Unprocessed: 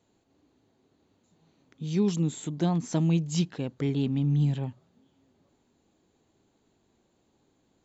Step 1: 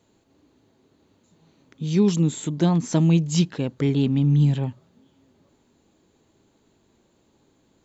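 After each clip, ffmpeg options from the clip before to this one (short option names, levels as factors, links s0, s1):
-af "bandreject=f=740:w=12,volume=2.11"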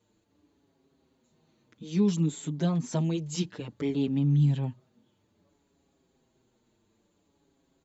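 -filter_complex "[0:a]asplit=2[s0][s1];[s1]adelay=6.2,afreqshift=-0.59[s2];[s0][s2]amix=inputs=2:normalize=1,volume=0.596"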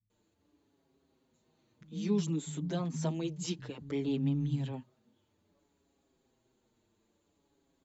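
-filter_complex "[0:a]acrossover=split=160[s0][s1];[s1]adelay=100[s2];[s0][s2]amix=inputs=2:normalize=0,volume=0.668"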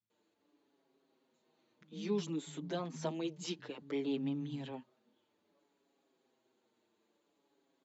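-af "highpass=290,lowpass=5200"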